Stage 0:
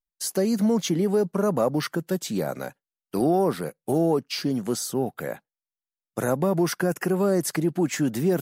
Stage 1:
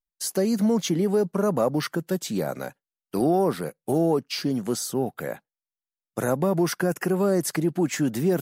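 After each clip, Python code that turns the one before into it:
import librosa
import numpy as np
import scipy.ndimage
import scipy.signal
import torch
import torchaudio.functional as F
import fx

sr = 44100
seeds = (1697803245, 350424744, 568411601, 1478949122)

y = x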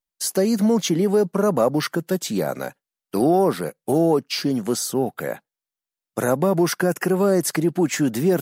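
y = fx.low_shelf(x, sr, hz=100.0, db=-7.5)
y = y * 10.0 ** (4.5 / 20.0)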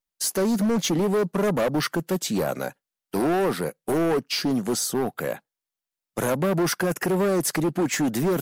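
y = np.clip(x, -10.0 ** (-19.0 / 20.0), 10.0 ** (-19.0 / 20.0))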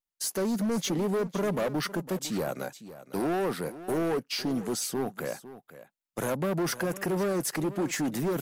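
y = x + 10.0 ** (-15.0 / 20.0) * np.pad(x, (int(505 * sr / 1000.0), 0))[:len(x)]
y = y * 10.0 ** (-6.0 / 20.0)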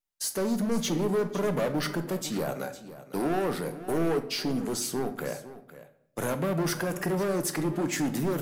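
y = fx.room_shoebox(x, sr, seeds[0], volume_m3=160.0, walls='mixed', distance_m=0.36)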